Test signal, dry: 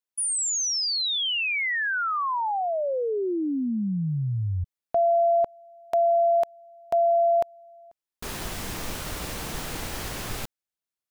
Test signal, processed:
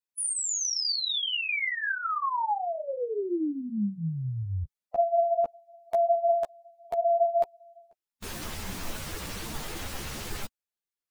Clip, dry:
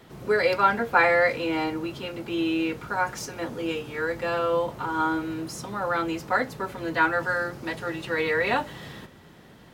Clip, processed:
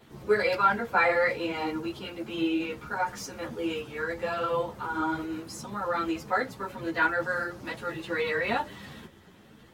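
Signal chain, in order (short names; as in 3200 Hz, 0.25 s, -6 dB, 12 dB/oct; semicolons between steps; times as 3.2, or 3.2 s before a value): bin magnitudes rounded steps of 15 dB; ensemble effect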